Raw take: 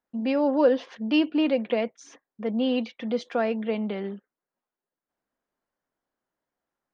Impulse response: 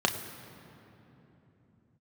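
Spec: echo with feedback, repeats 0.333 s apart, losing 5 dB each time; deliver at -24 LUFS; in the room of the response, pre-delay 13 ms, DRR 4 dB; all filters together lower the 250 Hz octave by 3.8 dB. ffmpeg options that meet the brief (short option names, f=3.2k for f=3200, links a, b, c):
-filter_complex "[0:a]equalizer=f=250:t=o:g=-4.5,aecho=1:1:333|666|999|1332|1665|1998|2331:0.562|0.315|0.176|0.0988|0.0553|0.031|0.0173,asplit=2[a][b];[1:a]atrim=start_sample=2205,adelay=13[c];[b][c]afir=irnorm=-1:irlink=0,volume=-15.5dB[d];[a][d]amix=inputs=2:normalize=0,volume=1.5dB"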